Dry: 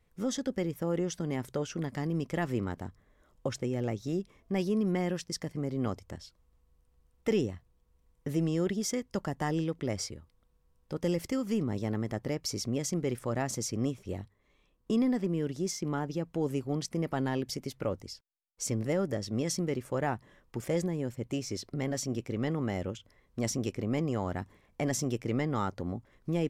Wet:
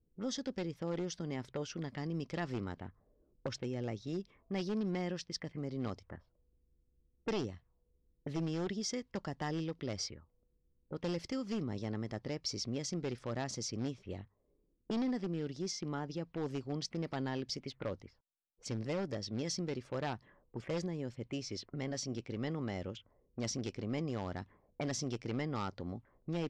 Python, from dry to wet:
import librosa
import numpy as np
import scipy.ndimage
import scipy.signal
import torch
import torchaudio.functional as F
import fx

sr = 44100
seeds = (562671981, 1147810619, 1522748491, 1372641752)

y = np.minimum(x, 2.0 * 10.0 ** (-24.0 / 20.0) - x)
y = fx.envelope_lowpass(y, sr, base_hz=320.0, top_hz=4900.0, q=2.2, full_db=-31.5, direction='up')
y = F.gain(torch.from_numpy(y), -6.5).numpy()